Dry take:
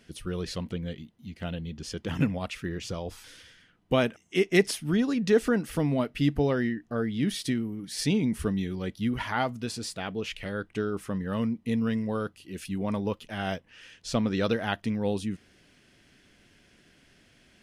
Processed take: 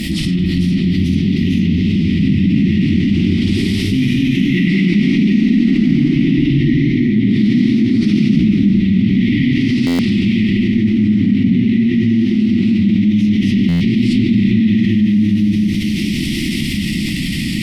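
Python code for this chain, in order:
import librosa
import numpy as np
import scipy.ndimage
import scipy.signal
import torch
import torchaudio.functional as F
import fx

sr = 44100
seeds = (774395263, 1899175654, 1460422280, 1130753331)

y = fx.bin_compress(x, sr, power=0.6)
y = fx.brickwall_bandstop(y, sr, low_hz=340.0, high_hz=1800.0)
y = fx.peak_eq(y, sr, hz=1300.0, db=-13.5, octaves=0.83)
y = y + 10.0 ** (-13.5 / 20.0) * np.pad(y, (int(449 * sr / 1000.0), 0))[:len(y)]
y = fx.rev_gated(y, sr, seeds[0], gate_ms=420, shape='flat', drr_db=-7.0)
y = np.repeat(y[::3], 3)[:len(y)]
y = fx.graphic_eq_31(y, sr, hz=(200, 1000, 6300, 10000), db=(7, -5, -10, -5))
y = fx.env_lowpass_down(y, sr, base_hz=2600.0, full_db=-18.0)
y = fx.echo_pitch(y, sr, ms=457, semitones=1, count=3, db_per_echo=-3.0)
y = fx.buffer_glitch(y, sr, at_s=(9.86, 13.68), block=512, repeats=10)
y = fx.env_flatten(y, sr, amount_pct=70)
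y = y * librosa.db_to_amplitude(-5.0)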